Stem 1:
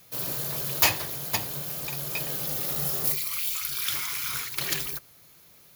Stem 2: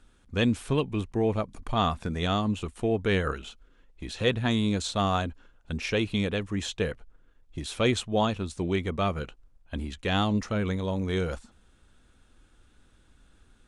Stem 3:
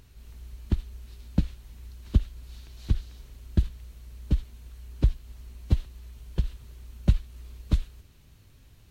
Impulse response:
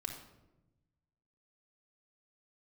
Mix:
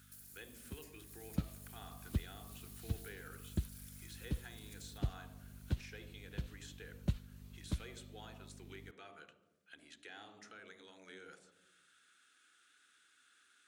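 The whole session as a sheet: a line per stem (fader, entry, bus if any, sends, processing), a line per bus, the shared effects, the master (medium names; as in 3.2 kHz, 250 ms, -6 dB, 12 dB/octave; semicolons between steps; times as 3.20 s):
-18.5 dB, 0.00 s, bus A, send -14.5 dB, compression, threshold -35 dBFS, peak gain reduction 18 dB; peaking EQ 8.8 kHz +14.5 dB 0.85 oct
0.0 dB, 0.00 s, bus A, send -17.5 dB, compression 1.5:1, threshold -47 dBFS, peak gain reduction 10 dB; high-pass 310 Hz 12 dB/octave
0.81 s -20.5 dB -> 1.42 s -10.5 dB, 0.00 s, no bus, no send, treble shelf 9.7 kHz +8.5 dB; hum 50 Hz, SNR 11 dB
bus A: 0.0 dB, steep high-pass 1.2 kHz 72 dB/octave; compression 2.5:1, threshold -58 dBFS, peak gain reduction 15.5 dB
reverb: on, RT60 1.0 s, pre-delay 3 ms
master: high-pass 78 Hz 12 dB/octave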